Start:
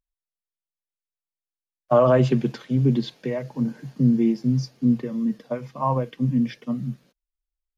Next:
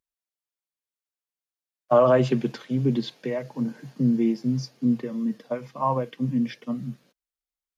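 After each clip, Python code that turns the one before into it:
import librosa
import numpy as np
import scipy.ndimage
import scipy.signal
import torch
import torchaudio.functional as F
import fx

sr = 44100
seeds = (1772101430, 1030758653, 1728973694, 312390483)

y = fx.highpass(x, sr, hz=210.0, slope=6)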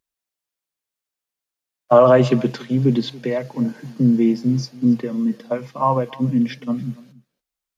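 y = x + 10.0 ** (-21.5 / 20.0) * np.pad(x, (int(283 * sr / 1000.0), 0))[:len(x)]
y = y * 10.0 ** (6.0 / 20.0)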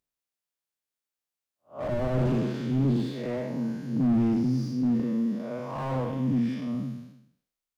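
y = fx.spec_blur(x, sr, span_ms=211.0)
y = fx.slew_limit(y, sr, full_power_hz=31.0)
y = y * 10.0 ** (-3.0 / 20.0)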